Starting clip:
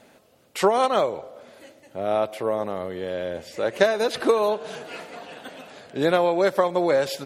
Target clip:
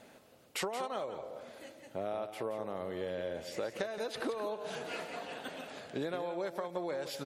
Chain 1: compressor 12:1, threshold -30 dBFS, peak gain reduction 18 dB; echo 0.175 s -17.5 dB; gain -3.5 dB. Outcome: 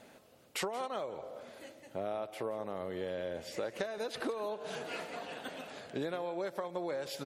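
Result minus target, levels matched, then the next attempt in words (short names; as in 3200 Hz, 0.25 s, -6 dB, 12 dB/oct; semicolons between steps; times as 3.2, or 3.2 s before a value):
echo-to-direct -7 dB
compressor 12:1, threshold -30 dBFS, peak gain reduction 18 dB; echo 0.175 s -10.5 dB; gain -3.5 dB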